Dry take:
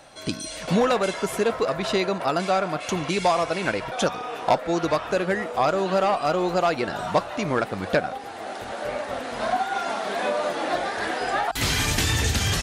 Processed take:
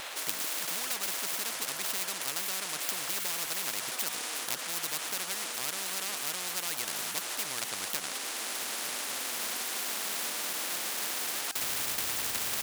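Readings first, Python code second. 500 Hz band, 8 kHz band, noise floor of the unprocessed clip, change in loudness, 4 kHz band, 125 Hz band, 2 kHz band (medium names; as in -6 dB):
-22.0 dB, +2.5 dB, -36 dBFS, -7.0 dB, -3.5 dB, -25.5 dB, -8.0 dB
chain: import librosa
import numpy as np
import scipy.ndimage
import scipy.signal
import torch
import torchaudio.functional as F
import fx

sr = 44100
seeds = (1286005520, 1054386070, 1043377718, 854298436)

y = scipy.signal.medfilt(x, 9)
y = scipy.signal.sosfilt(scipy.signal.butter(2, 1300.0, 'highpass', fs=sr, output='sos'), y)
y = fx.spectral_comp(y, sr, ratio=10.0)
y = F.gain(torch.from_numpy(y), 4.5).numpy()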